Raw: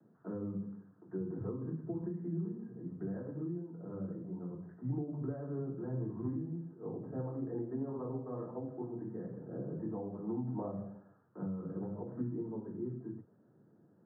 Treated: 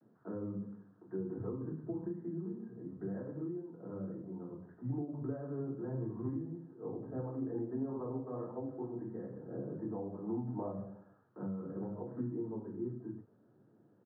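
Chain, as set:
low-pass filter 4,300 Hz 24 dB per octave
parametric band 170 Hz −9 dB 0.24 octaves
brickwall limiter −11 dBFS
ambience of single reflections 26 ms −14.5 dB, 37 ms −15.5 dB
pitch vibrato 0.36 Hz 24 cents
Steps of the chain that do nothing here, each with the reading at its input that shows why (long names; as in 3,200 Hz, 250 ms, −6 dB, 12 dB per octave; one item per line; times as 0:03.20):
low-pass filter 4,300 Hz: nothing at its input above 960 Hz
brickwall limiter −11 dBFS: peak of its input −26.5 dBFS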